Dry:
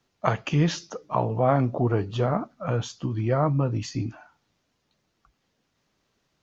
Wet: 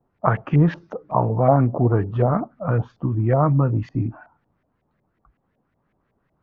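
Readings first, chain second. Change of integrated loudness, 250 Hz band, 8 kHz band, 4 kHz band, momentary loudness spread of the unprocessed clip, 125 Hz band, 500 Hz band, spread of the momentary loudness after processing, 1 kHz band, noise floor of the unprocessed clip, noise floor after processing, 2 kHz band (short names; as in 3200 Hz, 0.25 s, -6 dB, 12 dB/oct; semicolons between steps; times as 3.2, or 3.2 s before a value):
+5.0 dB, +5.0 dB, n/a, under -10 dB, 8 LU, +6.0 dB, +4.0 dB, 8 LU, +4.5 dB, -75 dBFS, -71 dBFS, +1.5 dB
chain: LFO low-pass saw up 5.4 Hz 660–2100 Hz; low shelf 400 Hz +9 dB; gain -2 dB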